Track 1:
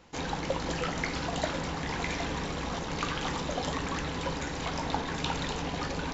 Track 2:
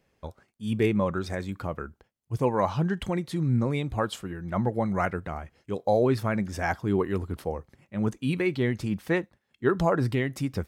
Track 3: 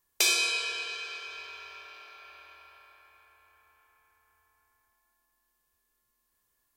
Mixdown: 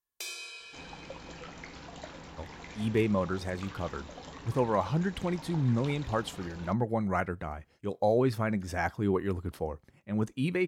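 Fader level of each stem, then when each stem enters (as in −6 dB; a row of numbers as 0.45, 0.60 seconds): −13.5, −3.0, −15.5 decibels; 0.60, 2.15, 0.00 seconds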